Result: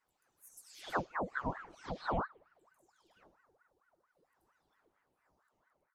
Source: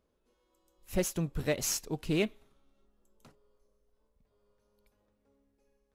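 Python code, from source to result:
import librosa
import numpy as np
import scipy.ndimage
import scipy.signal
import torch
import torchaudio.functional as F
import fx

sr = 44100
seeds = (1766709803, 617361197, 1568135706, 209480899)

p1 = fx.spec_delay(x, sr, highs='early', ms=460)
p2 = fx.env_lowpass_down(p1, sr, base_hz=750.0, full_db=-31.0)
p3 = p2 + fx.echo_stepped(p2, sr, ms=108, hz=4300.0, octaves=0.7, feedback_pct=70, wet_db=-3.5, dry=0)
p4 = fx.ring_lfo(p3, sr, carrier_hz=930.0, swing_pct=65, hz=4.4)
y = p4 * librosa.db_to_amplitude(-1.5)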